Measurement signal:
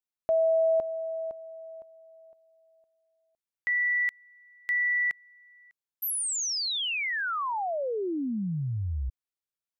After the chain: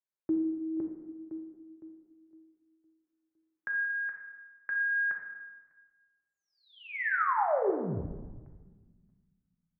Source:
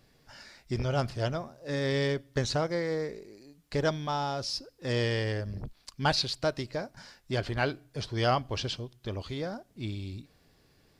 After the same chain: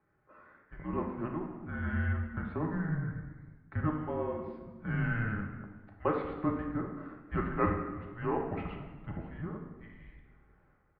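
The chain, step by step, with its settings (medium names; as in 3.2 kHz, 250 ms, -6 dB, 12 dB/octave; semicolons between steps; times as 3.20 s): bass shelf 290 Hz +9 dB; random-step tremolo 1.3 Hz; doubling 14 ms -12.5 dB; simulated room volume 1300 m³, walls mixed, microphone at 1.7 m; mistuned SSB -330 Hz 460–2200 Hz; trim -1 dB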